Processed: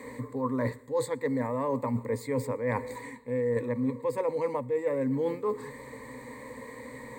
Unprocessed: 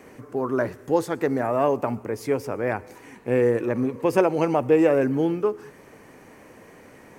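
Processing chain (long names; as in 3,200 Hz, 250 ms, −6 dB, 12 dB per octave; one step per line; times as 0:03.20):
EQ curve with evenly spaced ripples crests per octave 1, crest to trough 18 dB
reversed playback
downward compressor 10 to 1, threshold −26 dBFS, peak gain reduction 19 dB
reversed playback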